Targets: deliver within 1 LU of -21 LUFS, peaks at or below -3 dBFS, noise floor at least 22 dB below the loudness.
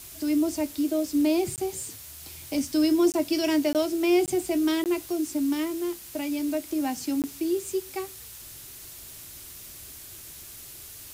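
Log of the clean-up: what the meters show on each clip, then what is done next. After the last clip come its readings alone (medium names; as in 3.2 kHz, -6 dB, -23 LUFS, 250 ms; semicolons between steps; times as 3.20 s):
dropouts 6; longest dropout 18 ms; noise floor -44 dBFS; noise floor target -49 dBFS; loudness -26.5 LUFS; peak level -12.5 dBFS; loudness target -21.0 LUFS
-> interpolate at 1.56/3.12/3.73/4.26/4.84/7.22 s, 18 ms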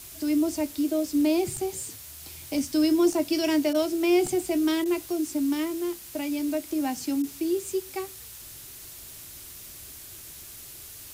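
dropouts 0; noise floor -44 dBFS; noise floor target -49 dBFS
-> noise reduction 6 dB, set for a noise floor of -44 dBFS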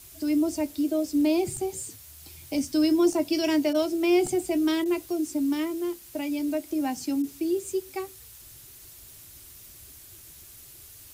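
noise floor -48 dBFS; noise floor target -49 dBFS
-> noise reduction 6 dB, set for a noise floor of -48 dBFS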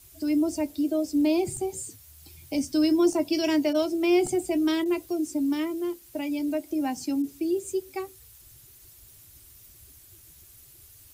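noise floor -53 dBFS; loudness -26.5 LUFS; peak level -13.0 dBFS; loudness target -21.0 LUFS
-> trim +5.5 dB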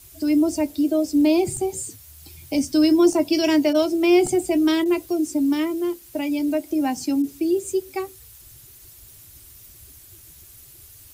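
loudness -21.0 LUFS; peak level -7.5 dBFS; noise floor -47 dBFS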